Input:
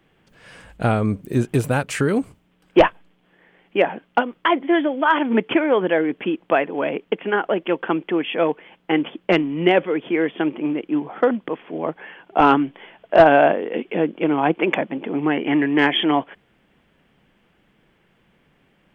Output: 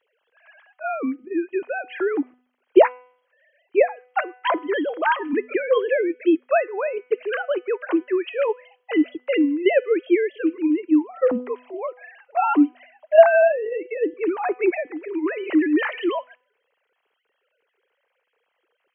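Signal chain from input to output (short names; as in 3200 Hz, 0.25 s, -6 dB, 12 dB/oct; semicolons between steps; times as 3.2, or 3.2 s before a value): sine-wave speech; de-hum 249.5 Hz, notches 29; gain -1.5 dB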